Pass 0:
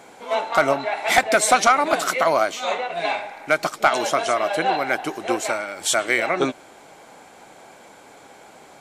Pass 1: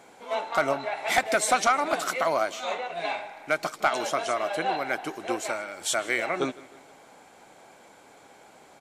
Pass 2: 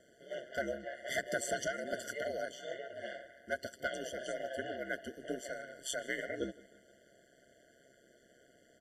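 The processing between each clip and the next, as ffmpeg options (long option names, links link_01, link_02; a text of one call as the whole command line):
ffmpeg -i in.wav -af "aecho=1:1:158|316|474|632:0.0891|0.0455|0.0232|0.0118,volume=-6.5dB" out.wav
ffmpeg -i in.wav -af "aeval=exprs='val(0)*sin(2*PI*66*n/s)':channel_layout=same,afftfilt=real='re*eq(mod(floor(b*sr/1024/710),2),0)':imag='im*eq(mod(floor(b*sr/1024/710),2),0)':win_size=1024:overlap=0.75,volume=-6.5dB" out.wav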